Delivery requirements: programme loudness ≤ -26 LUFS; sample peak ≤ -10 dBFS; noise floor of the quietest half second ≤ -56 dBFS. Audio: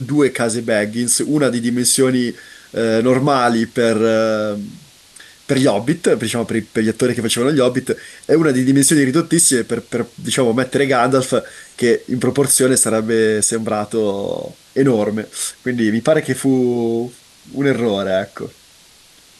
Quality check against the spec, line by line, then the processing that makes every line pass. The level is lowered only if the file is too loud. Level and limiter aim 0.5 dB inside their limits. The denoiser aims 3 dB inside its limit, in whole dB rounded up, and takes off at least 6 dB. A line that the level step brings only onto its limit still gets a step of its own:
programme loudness -16.5 LUFS: fail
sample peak -2.5 dBFS: fail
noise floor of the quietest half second -48 dBFS: fail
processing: trim -10 dB

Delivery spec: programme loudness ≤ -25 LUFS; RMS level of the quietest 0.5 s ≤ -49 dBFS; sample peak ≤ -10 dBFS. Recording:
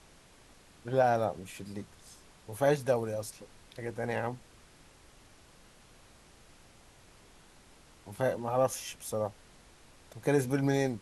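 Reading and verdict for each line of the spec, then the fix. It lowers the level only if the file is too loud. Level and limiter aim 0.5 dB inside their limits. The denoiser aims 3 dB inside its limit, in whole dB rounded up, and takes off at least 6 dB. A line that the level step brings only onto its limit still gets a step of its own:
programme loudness -32.0 LUFS: pass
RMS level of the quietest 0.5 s -58 dBFS: pass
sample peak -14.5 dBFS: pass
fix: none needed

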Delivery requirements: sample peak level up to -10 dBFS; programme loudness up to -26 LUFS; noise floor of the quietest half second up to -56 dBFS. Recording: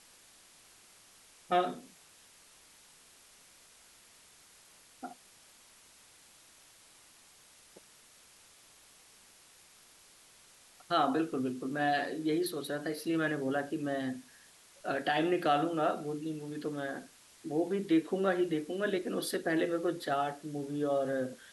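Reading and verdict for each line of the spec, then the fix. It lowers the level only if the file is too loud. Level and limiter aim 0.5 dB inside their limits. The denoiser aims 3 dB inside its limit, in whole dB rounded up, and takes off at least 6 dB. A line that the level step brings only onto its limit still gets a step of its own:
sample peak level -16.5 dBFS: pass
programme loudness -33.0 LUFS: pass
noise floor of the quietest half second -60 dBFS: pass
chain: none needed

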